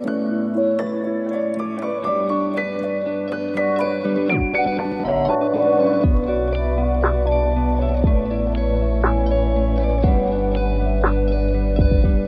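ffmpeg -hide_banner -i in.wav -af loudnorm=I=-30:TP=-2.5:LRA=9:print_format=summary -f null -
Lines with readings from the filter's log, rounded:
Input Integrated:    -19.8 LUFS
Input True Peak:      -4.4 dBTP
Input LRA:             3.3 LU
Input Threshold:     -29.8 LUFS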